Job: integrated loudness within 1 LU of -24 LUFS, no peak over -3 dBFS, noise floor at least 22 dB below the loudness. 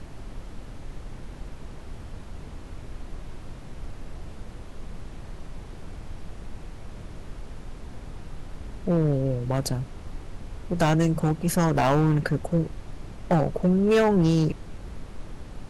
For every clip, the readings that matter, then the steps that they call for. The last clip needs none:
clipped samples 1.0%; clipping level -15.0 dBFS; noise floor -42 dBFS; noise floor target -46 dBFS; loudness -24.0 LUFS; peak level -15.0 dBFS; loudness target -24.0 LUFS
-> clip repair -15 dBFS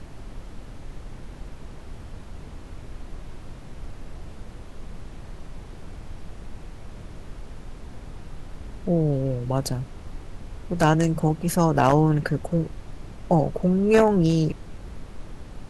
clipped samples 0.0%; noise floor -42 dBFS; noise floor target -45 dBFS
-> noise print and reduce 6 dB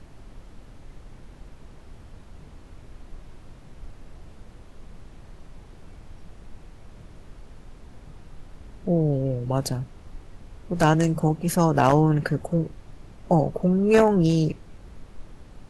noise floor -48 dBFS; loudness -22.5 LUFS; peak level -6.0 dBFS; loudness target -24.0 LUFS
-> trim -1.5 dB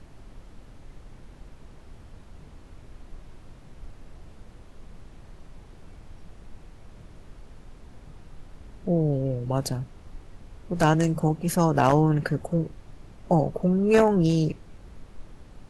loudness -24.0 LUFS; peak level -7.5 dBFS; noise floor -49 dBFS

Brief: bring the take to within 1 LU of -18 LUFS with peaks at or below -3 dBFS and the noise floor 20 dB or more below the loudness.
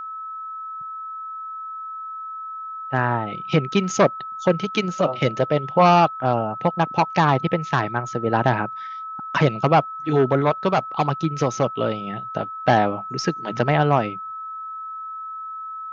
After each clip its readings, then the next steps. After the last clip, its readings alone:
steady tone 1.3 kHz; tone level -30 dBFS; loudness -22.5 LUFS; peak level -3.5 dBFS; loudness target -18.0 LUFS
-> band-stop 1.3 kHz, Q 30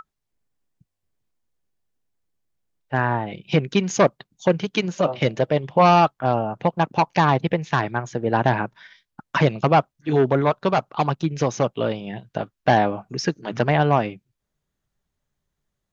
steady tone not found; loudness -21.5 LUFS; peak level -3.5 dBFS; loudness target -18.0 LUFS
-> trim +3.5 dB; peak limiter -3 dBFS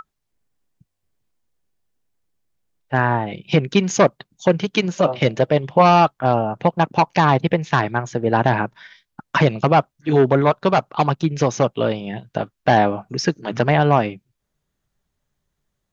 loudness -18.5 LUFS; peak level -3.0 dBFS; noise floor -77 dBFS

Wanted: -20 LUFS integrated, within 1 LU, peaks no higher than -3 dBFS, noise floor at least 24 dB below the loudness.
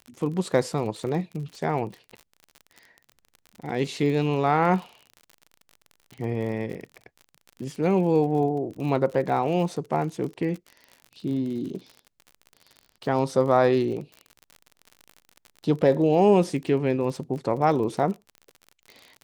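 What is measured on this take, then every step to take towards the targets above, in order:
tick rate 46 per s; loudness -25.0 LUFS; peak level -6.5 dBFS; loudness target -20.0 LUFS
-> de-click; trim +5 dB; peak limiter -3 dBFS

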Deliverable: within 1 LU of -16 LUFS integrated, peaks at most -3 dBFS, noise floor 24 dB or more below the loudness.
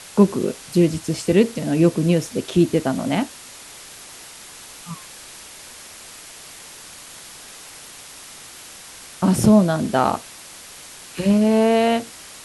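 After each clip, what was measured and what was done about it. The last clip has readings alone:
noise floor -41 dBFS; noise floor target -43 dBFS; loudness -19.0 LUFS; peak level -4.0 dBFS; loudness target -16.0 LUFS
-> noise reduction 6 dB, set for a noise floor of -41 dBFS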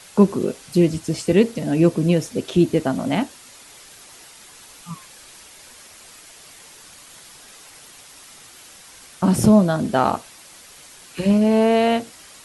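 noise floor -45 dBFS; loudness -19.0 LUFS; peak level -4.0 dBFS; loudness target -16.0 LUFS
-> trim +3 dB; peak limiter -3 dBFS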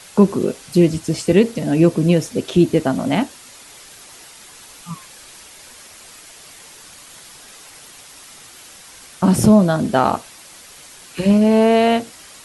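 loudness -16.5 LUFS; peak level -3.0 dBFS; noise floor -42 dBFS

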